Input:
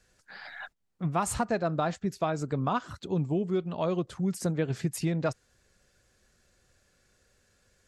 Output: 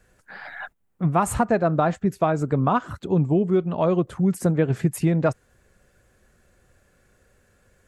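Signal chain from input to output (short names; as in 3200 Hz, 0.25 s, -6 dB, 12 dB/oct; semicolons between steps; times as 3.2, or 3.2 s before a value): bell 4900 Hz -12.5 dB 1.5 oct; gain +8.5 dB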